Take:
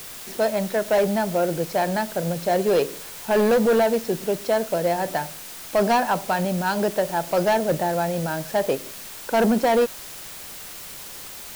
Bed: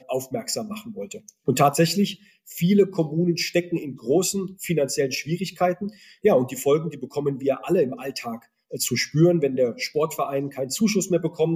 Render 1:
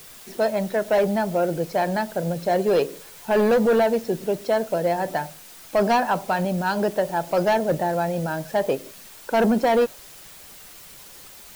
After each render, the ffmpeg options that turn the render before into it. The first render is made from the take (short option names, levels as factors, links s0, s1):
-af "afftdn=nr=7:nf=-38"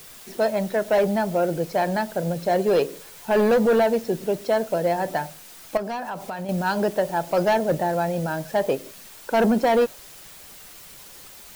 -filter_complex "[0:a]asettb=1/sr,asplit=3[s0][s1][s2];[s0]atrim=end=5.774[s3];[s1]atrim=start=5.77:end=6.49,asetpts=PTS-STARTPTS,afade=t=in:d=0.004:c=qsin,afade=t=out:st=0.716:d=0.004:c=qsin,acompressor=threshold=0.0355:ratio=4:attack=3.2:release=140:knee=1:detection=peak[s4];[s2]atrim=start=6.486[s5];[s3][s4]acrossfade=d=0.004:c1=hsin:c2=qsin[s6];[s6][s5]acrossfade=d=0.004:c1=qsin:c2=hsin"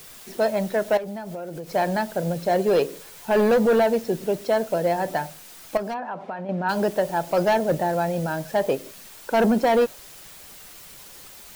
-filter_complex "[0:a]asettb=1/sr,asplit=3[s0][s1][s2];[s0]atrim=end=0.974[s3];[s1]atrim=start=0.97:end=1.73,asetpts=PTS-STARTPTS,afade=t=in:d=0.004:c=qsin,afade=t=out:st=0.756:d=0.004:c=qsin,acompressor=threshold=0.0316:ratio=8:attack=3.2:release=140:knee=1:detection=peak[s4];[s2]atrim=start=1.726[s5];[s3][s4]acrossfade=d=0.004:c1=hsin:c2=qsin[s6];[s6][s5]acrossfade=d=0.004:c1=qsin:c2=hsin,asplit=3[s7][s8][s9];[s7]afade=t=out:st=5.93:d=0.02[s10];[s8]highpass=170,lowpass=2000,afade=t=in:st=5.93:d=0.02,afade=t=out:st=6.68:d=0.02[s11];[s9]afade=t=in:st=6.68:d=0.02[s12];[s10][s11][s12]amix=inputs=3:normalize=0"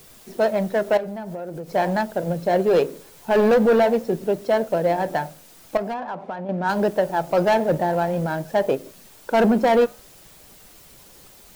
-filter_complex "[0:a]flanger=delay=2.9:depth=9.2:regen=-87:speed=0.46:shape=sinusoidal,asplit=2[s0][s1];[s1]adynamicsmooth=sensitivity=6.5:basefreq=800,volume=1.12[s2];[s0][s2]amix=inputs=2:normalize=0"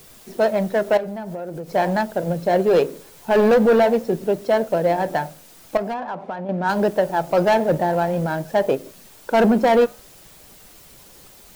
-af "volume=1.19"